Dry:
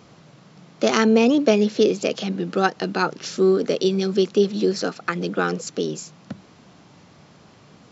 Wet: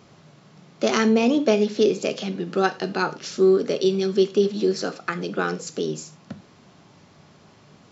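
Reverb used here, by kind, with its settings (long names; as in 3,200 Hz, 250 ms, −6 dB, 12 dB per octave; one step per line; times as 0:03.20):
reverb whose tail is shaped and stops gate 130 ms falling, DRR 9 dB
level −2.5 dB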